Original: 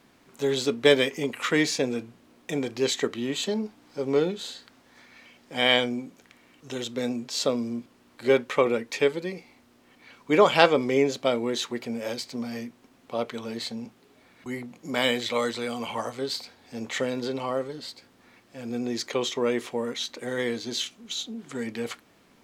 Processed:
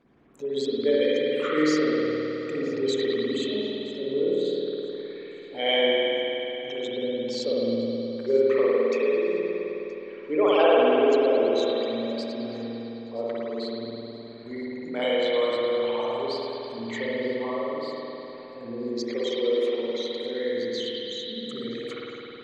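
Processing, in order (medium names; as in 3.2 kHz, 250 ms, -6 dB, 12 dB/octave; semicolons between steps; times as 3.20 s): resonances exaggerated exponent 2; thinning echo 972 ms, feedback 25%, level -19.5 dB; spring tank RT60 3.5 s, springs 52 ms, chirp 60 ms, DRR -7 dB; trim -6 dB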